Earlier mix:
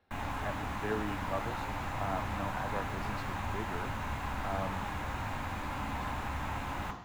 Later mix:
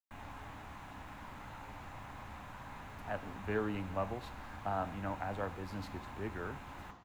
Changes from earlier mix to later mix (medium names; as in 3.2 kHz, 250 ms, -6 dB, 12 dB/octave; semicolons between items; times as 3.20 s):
speech: entry +2.65 s; background -11.5 dB